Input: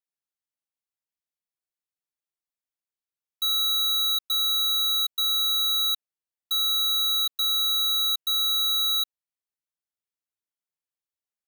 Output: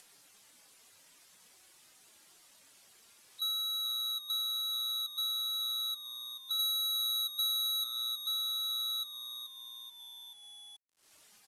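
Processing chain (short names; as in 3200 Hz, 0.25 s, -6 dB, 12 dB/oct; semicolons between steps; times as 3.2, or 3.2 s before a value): median-filter separation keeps harmonic; limiter -32 dBFS, peak gain reduction 9 dB; 6.59–7.84 high shelf 4500 Hz +8 dB; reverb removal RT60 0.9 s; frequency-shifting echo 0.432 s, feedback 41%, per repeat -120 Hz, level -12 dB; upward compressor, threshold -49 dBFS; requantised 12-bit, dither none; LPF 12000 Hz 24 dB/oct; three-band squash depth 40%; gain +1 dB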